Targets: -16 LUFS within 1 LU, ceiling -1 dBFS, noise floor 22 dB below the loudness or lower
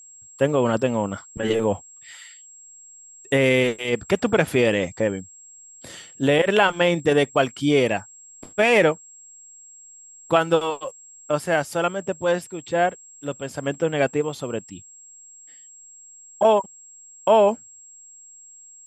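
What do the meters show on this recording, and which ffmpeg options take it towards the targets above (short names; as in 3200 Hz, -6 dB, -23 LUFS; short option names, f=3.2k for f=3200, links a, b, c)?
steady tone 7600 Hz; tone level -44 dBFS; loudness -21.5 LUFS; peak -4.0 dBFS; loudness target -16.0 LUFS
-> -af "bandreject=f=7.6k:w=30"
-af "volume=5.5dB,alimiter=limit=-1dB:level=0:latency=1"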